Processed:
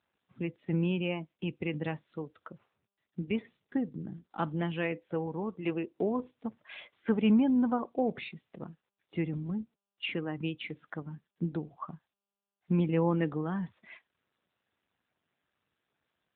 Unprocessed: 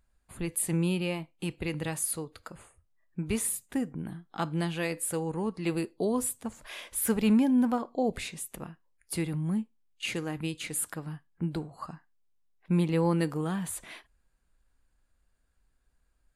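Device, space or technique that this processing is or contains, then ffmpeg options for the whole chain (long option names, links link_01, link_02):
mobile call with aggressive noise cancelling: -filter_complex "[0:a]asplit=3[link_01][link_02][link_03];[link_01]afade=type=out:start_time=5.27:duration=0.02[link_04];[link_02]adynamicequalizer=threshold=0.00708:dfrequency=140:dqfactor=0.81:tfrequency=140:tqfactor=0.81:attack=5:release=100:ratio=0.375:range=3:mode=cutabove:tftype=bell,afade=type=in:start_time=5.27:duration=0.02,afade=type=out:start_time=6.18:duration=0.02[link_05];[link_03]afade=type=in:start_time=6.18:duration=0.02[link_06];[link_04][link_05][link_06]amix=inputs=3:normalize=0,highpass=120,afftdn=noise_reduction=14:noise_floor=-43" -ar 8000 -c:a libopencore_amrnb -b:a 10200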